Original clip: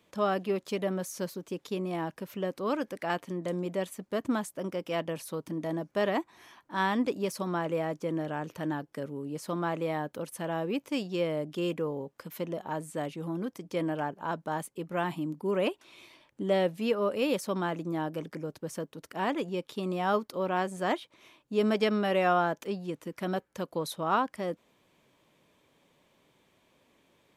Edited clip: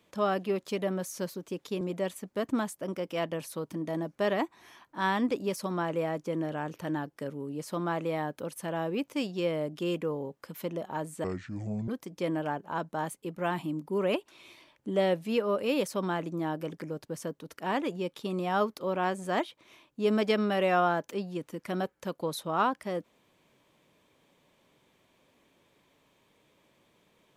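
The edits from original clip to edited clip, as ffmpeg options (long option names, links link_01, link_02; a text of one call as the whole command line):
ffmpeg -i in.wav -filter_complex "[0:a]asplit=4[link_01][link_02][link_03][link_04];[link_01]atrim=end=1.812[link_05];[link_02]atrim=start=3.568:end=13.004[link_06];[link_03]atrim=start=13:end=13.41,asetpts=PTS-STARTPTS,asetrate=28224,aresample=44100[link_07];[link_04]atrim=start=13.406[link_08];[link_05][link_06]acrossfade=duration=0.004:curve1=hsin:curve2=hsin[link_09];[link_09][link_07]acrossfade=duration=0.004:curve1=hsin:curve2=hsin[link_10];[link_10][link_08]acrossfade=duration=0.004:curve1=hsin:curve2=hsin" out.wav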